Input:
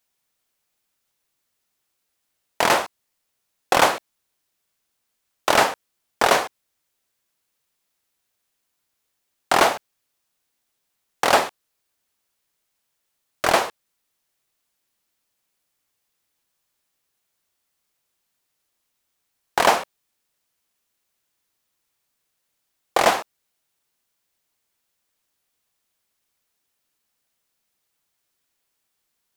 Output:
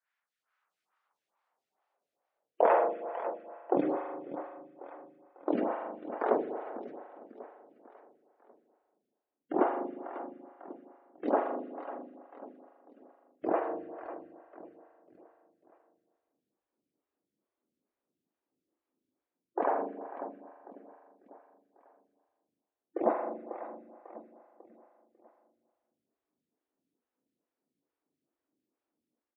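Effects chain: level rider gain up to 7 dB; spectral gate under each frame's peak -15 dB strong; band-pass sweep 1.6 kHz -> 280 Hz, 0.16–3.91 s; on a send: feedback delay 546 ms, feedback 45%, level -13 dB; on the sum: spring tank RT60 1.6 s, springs 39 ms, chirp 40 ms, DRR 4 dB; lamp-driven phase shifter 2.3 Hz; trim +3 dB

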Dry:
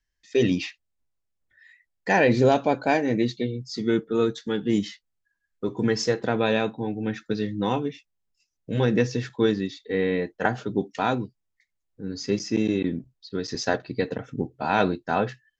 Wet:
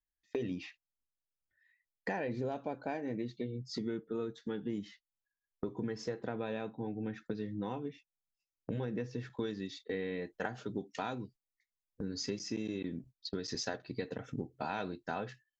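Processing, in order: gate -43 dBFS, range -19 dB; treble shelf 2.9 kHz -10 dB, from 9.37 s +3.5 dB; compression 5:1, threshold -41 dBFS, peak gain reduction 23 dB; trim +4 dB

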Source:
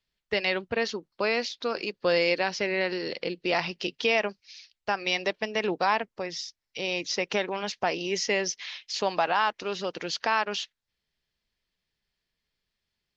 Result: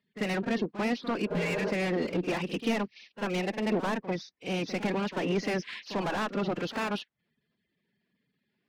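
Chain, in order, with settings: coarse spectral quantiser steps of 30 dB; in parallel at +1 dB: compression 6:1, threshold -33 dBFS, peak gain reduction 13 dB; on the sum: band-pass 140–2300 Hz; one-sided clip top -30.5 dBFS; spectral replace 2.02–2.56 s, 280–1700 Hz after; saturation -28 dBFS, distortion -7 dB; peaking EQ 220 Hz +11 dB 1.7 oct; time stretch by phase-locked vocoder 0.66×; pre-echo 44 ms -12.5 dB

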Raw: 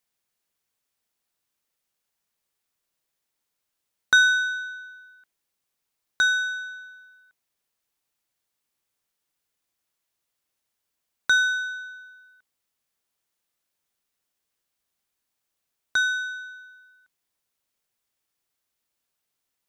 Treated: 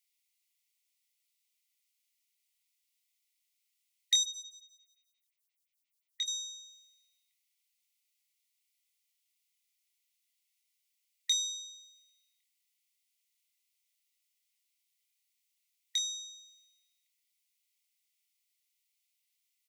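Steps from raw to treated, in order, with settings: brick-wall FIR high-pass 1.9 kHz; doubling 26 ms -7 dB; 4.23–6.28 s: lamp-driven phase shifter 5.7 Hz

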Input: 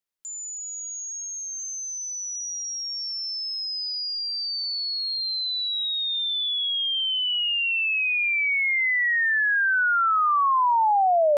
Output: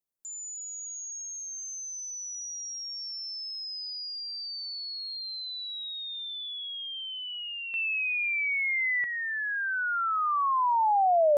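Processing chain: peaking EQ 2.7 kHz -12.5 dB 2.2 oct, from 7.74 s -5.5 dB, from 9.04 s -13 dB

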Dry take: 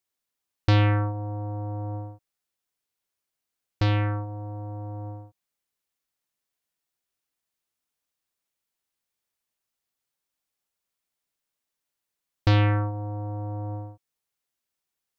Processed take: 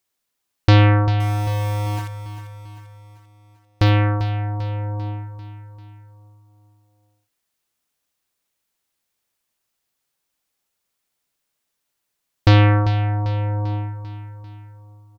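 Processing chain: 1.20–3.90 s: small samples zeroed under -33 dBFS; feedback delay 394 ms, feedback 52%, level -12 dB; trim +7.5 dB

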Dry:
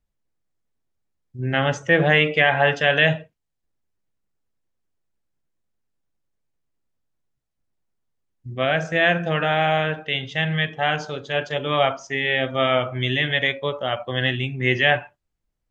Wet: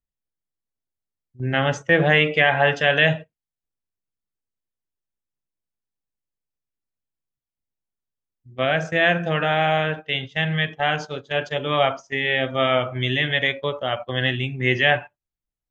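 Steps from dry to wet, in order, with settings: gate -30 dBFS, range -12 dB

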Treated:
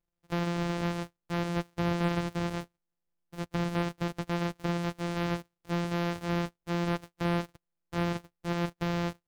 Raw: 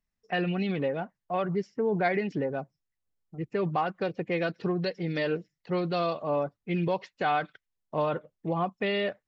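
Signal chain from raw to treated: sorted samples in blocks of 256 samples; slew-rate limiter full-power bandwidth 250 Hz; trim -2 dB

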